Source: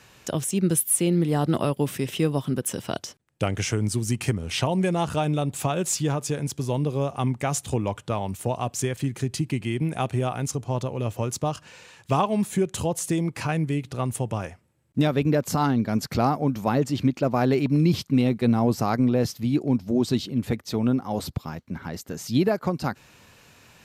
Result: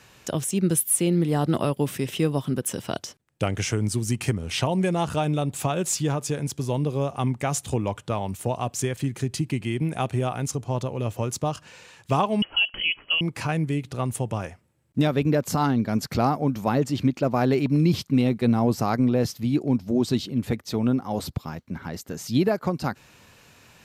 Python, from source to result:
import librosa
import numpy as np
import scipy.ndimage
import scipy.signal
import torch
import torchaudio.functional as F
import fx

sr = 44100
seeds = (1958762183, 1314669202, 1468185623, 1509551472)

y = fx.freq_invert(x, sr, carrier_hz=3100, at=(12.42, 13.21))